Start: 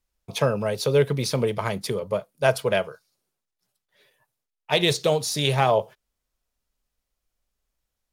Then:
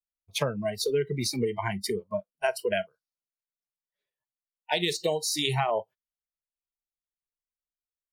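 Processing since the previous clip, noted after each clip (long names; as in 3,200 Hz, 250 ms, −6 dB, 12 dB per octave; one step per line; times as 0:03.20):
noise reduction from a noise print of the clip's start 28 dB
downward compressor, threshold −23 dBFS, peak gain reduction 8.5 dB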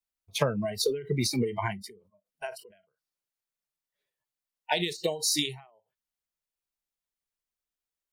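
every ending faded ahead of time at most 120 dB per second
level +3 dB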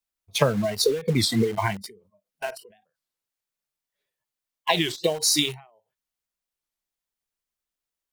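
in parallel at −7 dB: bit reduction 6 bits
on the sum: wow of a warped record 33 1/3 rpm, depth 250 cents
level +2.5 dB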